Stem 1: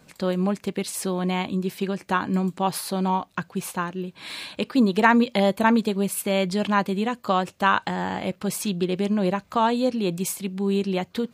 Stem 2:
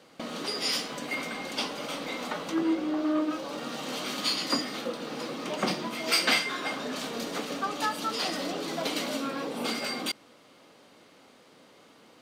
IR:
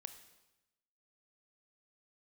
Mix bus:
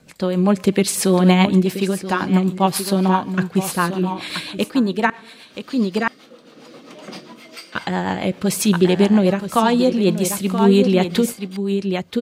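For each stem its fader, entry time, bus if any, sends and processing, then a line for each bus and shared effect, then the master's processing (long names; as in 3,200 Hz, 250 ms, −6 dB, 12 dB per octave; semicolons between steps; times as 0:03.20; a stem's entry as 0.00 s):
+2.0 dB, 0.00 s, muted 0:05.10–0:07.75, send −3.5 dB, echo send −7 dB, no processing
−16.5 dB, 1.45 s, no send, no echo send, no processing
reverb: on, RT60 1.0 s, pre-delay 23 ms
echo: single-tap delay 979 ms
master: automatic gain control gain up to 13 dB; rotating-speaker cabinet horn 7.5 Hz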